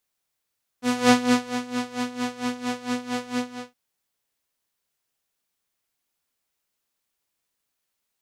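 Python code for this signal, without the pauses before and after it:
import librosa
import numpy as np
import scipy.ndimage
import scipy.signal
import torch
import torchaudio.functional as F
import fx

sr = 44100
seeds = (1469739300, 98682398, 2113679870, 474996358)

y = fx.sub_patch_tremolo(sr, seeds[0], note=59, wave='saw', wave2='saw', interval_st=0, detune_cents=16, level2_db=-9.0, sub_db=-25.5, noise_db=-14, kind='lowpass', cutoff_hz=6000.0, q=0.88, env_oct=0.5, env_decay_s=0.27, env_sustain_pct=40, attack_ms=205.0, decay_s=0.48, sustain_db=-13.0, release_s=0.35, note_s=2.57, lfo_hz=4.4, tremolo_db=17.0)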